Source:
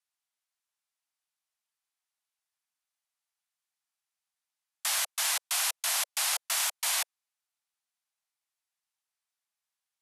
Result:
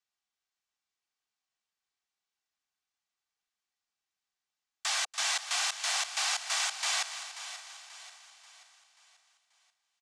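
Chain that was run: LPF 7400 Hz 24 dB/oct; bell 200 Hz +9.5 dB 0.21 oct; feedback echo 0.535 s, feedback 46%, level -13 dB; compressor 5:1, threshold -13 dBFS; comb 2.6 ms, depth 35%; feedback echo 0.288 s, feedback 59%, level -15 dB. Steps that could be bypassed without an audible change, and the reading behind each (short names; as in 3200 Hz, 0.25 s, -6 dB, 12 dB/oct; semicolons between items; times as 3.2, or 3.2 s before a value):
bell 200 Hz: input band starts at 480 Hz; compressor, threshold -13 dBFS: input peak -18.0 dBFS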